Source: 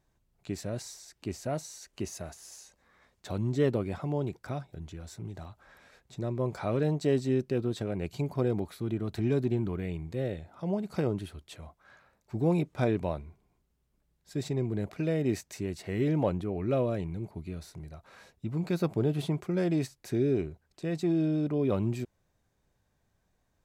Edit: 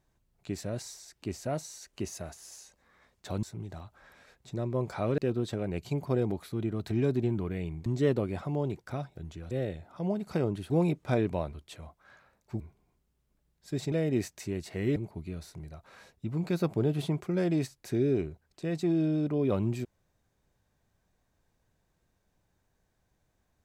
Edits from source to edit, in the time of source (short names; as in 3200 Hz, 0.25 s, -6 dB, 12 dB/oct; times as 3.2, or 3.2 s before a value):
3.43–5.08 move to 10.14
6.83–7.46 cut
12.4–13.23 move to 11.33
14.55–15.05 cut
16.09–17.16 cut